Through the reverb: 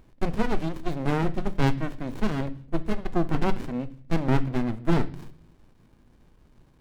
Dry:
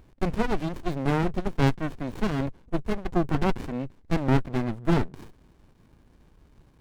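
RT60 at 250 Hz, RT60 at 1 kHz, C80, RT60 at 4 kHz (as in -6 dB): 0.70 s, 0.45 s, 21.0 dB, 0.55 s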